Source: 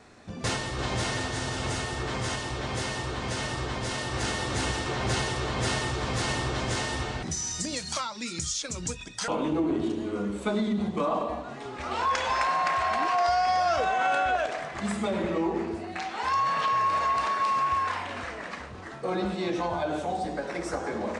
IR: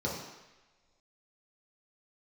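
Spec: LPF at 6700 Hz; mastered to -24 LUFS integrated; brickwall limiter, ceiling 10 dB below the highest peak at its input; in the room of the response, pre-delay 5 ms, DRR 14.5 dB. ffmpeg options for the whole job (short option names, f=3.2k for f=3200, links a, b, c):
-filter_complex "[0:a]lowpass=6.7k,alimiter=level_in=1.5dB:limit=-24dB:level=0:latency=1,volume=-1.5dB,asplit=2[a][b];[1:a]atrim=start_sample=2205,adelay=5[c];[b][c]afir=irnorm=-1:irlink=0,volume=-21dB[d];[a][d]amix=inputs=2:normalize=0,volume=9.5dB"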